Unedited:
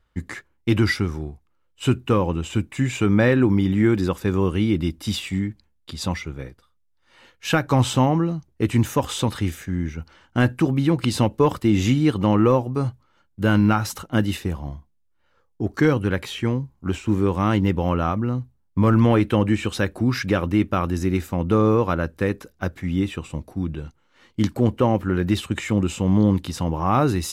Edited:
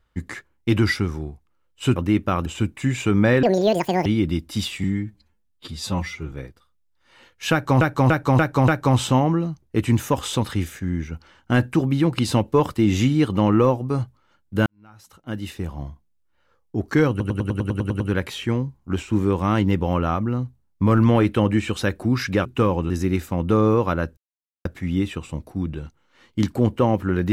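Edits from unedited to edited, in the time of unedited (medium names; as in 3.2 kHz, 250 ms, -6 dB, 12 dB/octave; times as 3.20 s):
1.96–2.41 s: swap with 20.41–20.91 s
3.38–4.57 s: speed 190%
5.35–6.34 s: stretch 1.5×
7.54–7.83 s: loop, 5 plays
13.52–14.68 s: fade in quadratic
15.96 s: stutter 0.10 s, 10 plays
22.18–22.66 s: mute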